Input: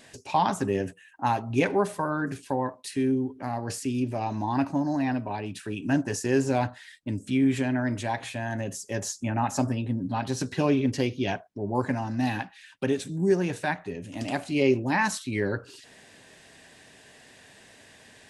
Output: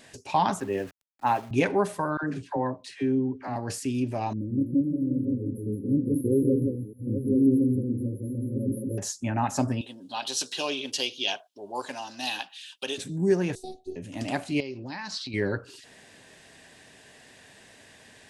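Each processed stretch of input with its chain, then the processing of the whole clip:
0.6–1.51 tone controls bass -8 dB, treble -10 dB + sample gate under -43.5 dBFS + three-band expander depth 70%
2.17–3.56 air absorption 90 m + dispersion lows, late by 60 ms, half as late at 580 Hz
4.33–8.98 reverse delay 0.627 s, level -6 dB + brick-wall FIR band-stop 560–10000 Hz + echo 0.173 s -4 dB
9.81–12.98 Bessel high-pass 710 Hz + resonant high shelf 2500 Hz +7 dB, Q 3
13.55–13.96 elliptic band-stop 550–4100 Hz, stop band 50 dB + robotiser 375 Hz
14.6–15.34 compressor 4:1, threshold -36 dBFS + synth low-pass 4700 Hz, resonance Q 5.3
whole clip: dry

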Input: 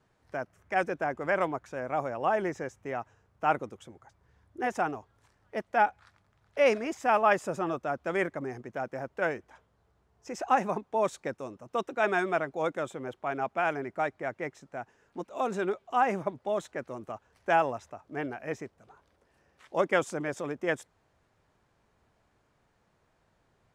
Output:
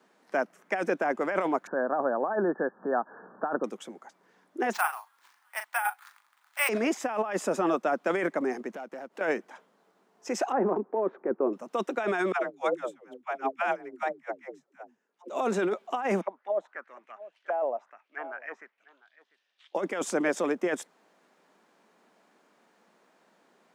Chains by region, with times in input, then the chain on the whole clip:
1.67–3.64 upward compressor, threshold -37 dBFS + brick-wall FIR low-pass 1800 Hz
4.73–6.69 steep high-pass 880 Hz + doubler 39 ms -8.5 dB + careless resampling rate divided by 4×, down none, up hold
8.72–9.21 compressor 2.5:1, threshold -53 dBFS + sample leveller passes 1
10.52–11.53 LPF 1500 Hz 24 dB/oct + compressor 12:1, threshold -28 dBFS + bell 380 Hz +11.5 dB 0.64 oct
12.32–15.3 dispersion lows, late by 0.147 s, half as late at 420 Hz + upward expander 2.5:1, over -39 dBFS
16.21–19.75 auto-wah 630–3600 Hz, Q 3.8, down, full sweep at -26.5 dBFS + echo 0.696 s -21 dB
whole clip: steep high-pass 190 Hz 48 dB/oct; negative-ratio compressor -31 dBFS, ratio -1; gain +4.5 dB

